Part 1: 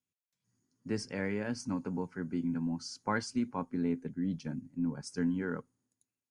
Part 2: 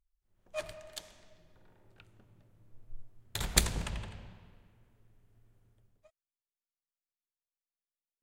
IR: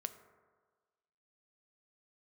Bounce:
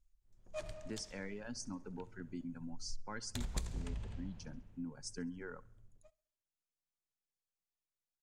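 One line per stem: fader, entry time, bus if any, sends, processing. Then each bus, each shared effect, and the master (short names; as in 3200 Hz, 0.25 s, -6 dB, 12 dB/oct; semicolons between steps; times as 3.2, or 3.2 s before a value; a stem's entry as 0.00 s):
-8.0 dB, 0.00 s, no send, echo send -22.5 dB, reverb removal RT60 1.8 s
-4.5 dB, 0.00 s, no send, echo send -22.5 dB, tilt -2.5 dB/oct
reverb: off
echo: feedback echo 68 ms, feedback 46%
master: bell 6700 Hz +9.5 dB 1.3 oct; compressor 3:1, threshold -39 dBFS, peak gain reduction 16.5 dB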